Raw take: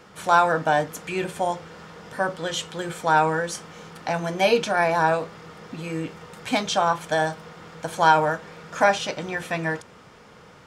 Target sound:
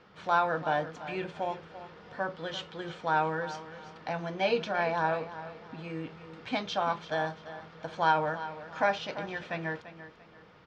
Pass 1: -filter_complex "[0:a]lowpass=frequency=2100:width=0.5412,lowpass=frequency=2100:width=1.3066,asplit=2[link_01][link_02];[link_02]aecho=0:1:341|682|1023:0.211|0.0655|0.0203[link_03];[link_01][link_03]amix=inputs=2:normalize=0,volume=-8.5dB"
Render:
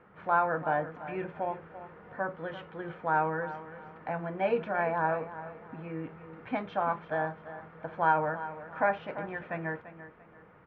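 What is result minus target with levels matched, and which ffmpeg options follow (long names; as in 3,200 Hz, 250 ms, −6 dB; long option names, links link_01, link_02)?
4,000 Hz band −15.0 dB
-filter_complex "[0:a]lowpass=frequency=4700:width=0.5412,lowpass=frequency=4700:width=1.3066,asplit=2[link_01][link_02];[link_02]aecho=0:1:341|682|1023:0.211|0.0655|0.0203[link_03];[link_01][link_03]amix=inputs=2:normalize=0,volume=-8.5dB"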